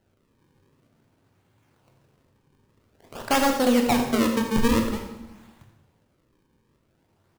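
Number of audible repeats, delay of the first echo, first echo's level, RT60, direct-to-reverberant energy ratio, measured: 1, 83 ms, −12.0 dB, 1.0 s, 2.5 dB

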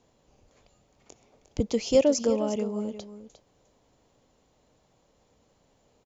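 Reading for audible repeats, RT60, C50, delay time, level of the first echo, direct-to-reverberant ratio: 1, no reverb audible, no reverb audible, 355 ms, −12.5 dB, no reverb audible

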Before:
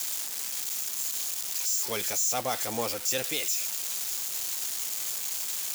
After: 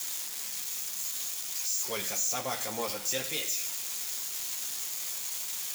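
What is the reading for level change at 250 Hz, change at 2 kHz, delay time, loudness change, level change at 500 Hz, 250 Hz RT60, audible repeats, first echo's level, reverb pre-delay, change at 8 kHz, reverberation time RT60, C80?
−3.5 dB, −2.0 dB, no echo audible, −3.0 dB, −3.5 dB, 0.95 s, no echo audible, no echo audible, 3 ms, −2.5 dB, 1.0 s, 13.5 dB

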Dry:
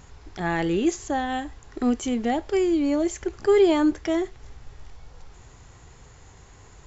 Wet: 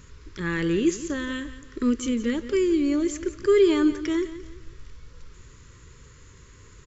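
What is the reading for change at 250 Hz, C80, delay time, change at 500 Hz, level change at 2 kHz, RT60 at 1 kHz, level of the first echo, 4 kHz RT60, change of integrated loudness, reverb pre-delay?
0.0 dB, no reverb audible, 174 ms, −0.5 dB, 0.0 dB, no reverb audible, −14.0 dB, no reverb audible, −0.5 dB, no reverb audible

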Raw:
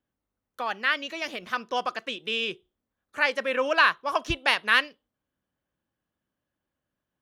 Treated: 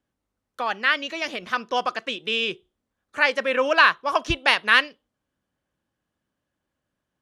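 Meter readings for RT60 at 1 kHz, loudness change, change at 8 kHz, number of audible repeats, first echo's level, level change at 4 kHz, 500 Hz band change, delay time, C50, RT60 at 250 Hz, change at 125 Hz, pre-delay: no reverb audible, +4.0 dB, +3.0 dB, no echo audible, no echo audible, +4.0 dB, +4.0 dB, no echo audible, no reverb audible, no reverb audible, +4.0 dB, no reverb audible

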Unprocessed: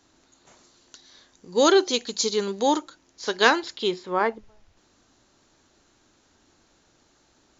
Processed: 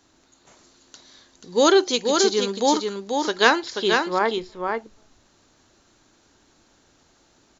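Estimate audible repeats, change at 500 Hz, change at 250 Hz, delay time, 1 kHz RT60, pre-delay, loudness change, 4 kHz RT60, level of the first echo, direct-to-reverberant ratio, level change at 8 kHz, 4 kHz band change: 1, +3.0 dB, +3.0 dB, 484 ms, no reverb audible, no reverb audible, +2.0 dB, no reverb audible, −4.5 dB, no reverb audible, can't be measured, +3.0 dB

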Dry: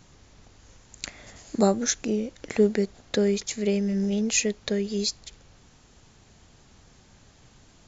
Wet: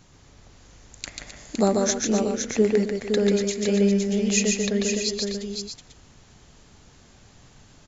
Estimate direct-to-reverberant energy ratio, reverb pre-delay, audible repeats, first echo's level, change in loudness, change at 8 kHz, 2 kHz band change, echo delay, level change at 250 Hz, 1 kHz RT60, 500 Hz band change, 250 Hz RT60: no reverb audible, no reverb audible, 4, −3.5 dB, +2.5 dB, can't be measured, +3.0 dB, 140 ms, +3.0 dB, no reverb audible, +3.0 dB, no reverb audible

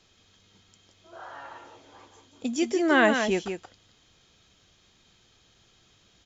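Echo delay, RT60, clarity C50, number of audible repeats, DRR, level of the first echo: 174 ms, no reverb audible, no reverb audible, 1, no reverb audible, −7.0 dB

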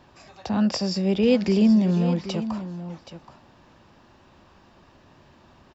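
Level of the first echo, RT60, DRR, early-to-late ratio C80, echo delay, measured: −12.5 dB, no reverb audible, no reverb audible, no reverb audible, 776 ms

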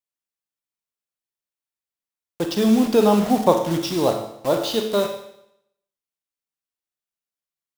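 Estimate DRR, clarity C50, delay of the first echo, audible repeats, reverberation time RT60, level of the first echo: 4.0 dB, 6.0 dB, no echo audible, no echo audible, 0.75 s, no echo audible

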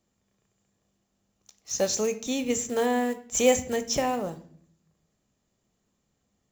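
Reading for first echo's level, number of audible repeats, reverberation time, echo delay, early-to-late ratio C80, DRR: no echo audible, no echo audible, 0.60 s, no echo audible, 18.5 dB, 9.5 dB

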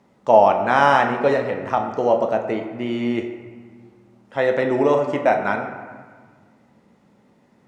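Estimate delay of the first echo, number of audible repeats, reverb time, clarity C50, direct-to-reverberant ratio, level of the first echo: no echo audible, no echo audible, 1.6 s, 7.0 dB, 3.5 dB, no echo audible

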